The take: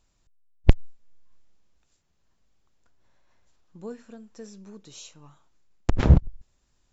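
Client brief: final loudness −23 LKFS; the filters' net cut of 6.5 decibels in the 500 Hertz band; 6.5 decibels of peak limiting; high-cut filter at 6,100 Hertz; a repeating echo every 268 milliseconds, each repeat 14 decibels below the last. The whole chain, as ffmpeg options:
ffmpeg -i in.wav -af "lowpass=6100,equalizer=frequency=500:width_type=o:gain=-8.5,alimiter=limit=-10.5dB:level=0:latency=1,aecho=1:1:268|536:0.2|0.0399,volume=6dB" out.wav

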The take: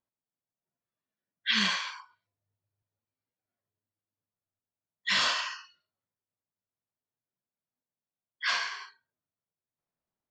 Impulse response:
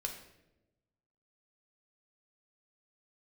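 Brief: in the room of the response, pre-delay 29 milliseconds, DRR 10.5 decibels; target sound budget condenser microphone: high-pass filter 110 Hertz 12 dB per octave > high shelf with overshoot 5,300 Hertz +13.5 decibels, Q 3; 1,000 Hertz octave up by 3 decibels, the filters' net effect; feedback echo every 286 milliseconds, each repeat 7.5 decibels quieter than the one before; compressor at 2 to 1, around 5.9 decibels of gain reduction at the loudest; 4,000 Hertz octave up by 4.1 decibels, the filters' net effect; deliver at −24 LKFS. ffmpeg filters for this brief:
-filter_complex "[0:a]equalizer=frequency=1000:width_type=o:gain=3.5,equalizer=frequency=4000:width_type=o:gain=8.5,acompressor=threshold=-28dB:ratio=2,aecho=1:1:286|572|858|1144|1430:0.422|0.177|0.0744|0.0312|0.0131,asplit=2[link_01][link_02];[1:a]atrim=start_sample=2205,adelay=29[link_03];[link_02][link_03]afir=irnorm=-1:irlink=0,volume=-10.5dB[link_04];[link_01][link_04]amix=inputs=2:normalize=0,highpass=110,highshelf=frequency=5300:width_type=q:width=3:gain=13.5,volume=4.5dB"

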